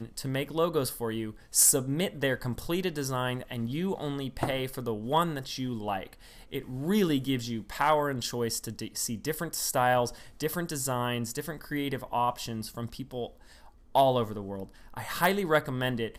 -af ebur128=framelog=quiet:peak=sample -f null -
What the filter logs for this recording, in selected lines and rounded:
Integrated loudness:
  I:         -29.7 LUFS
  Threshold: -39.9 LUFS
Loudness range:
  LRA:         4.8 LU
  Threshold: -50.4 LUFS
  LRA low:   -32.6 LUFS
  LRA high:  -27.8 LUFS
Sample peak:
  Peak:       -9.4 dBFS